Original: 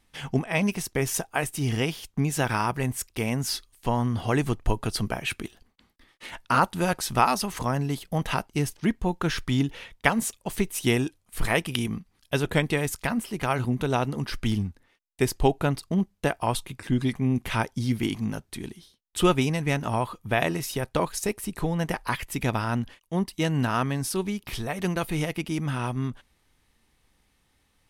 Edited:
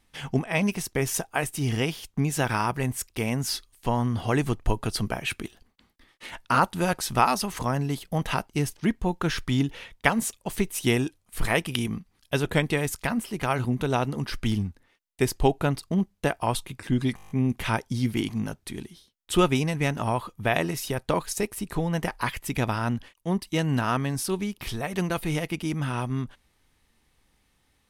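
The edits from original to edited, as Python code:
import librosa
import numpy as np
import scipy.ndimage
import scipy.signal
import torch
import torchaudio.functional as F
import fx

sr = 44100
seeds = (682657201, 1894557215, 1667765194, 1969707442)

y = fx.edit(x, sr, fx.stutter(start_s=17.16, slice_s=0.02, count=8), tone=tone)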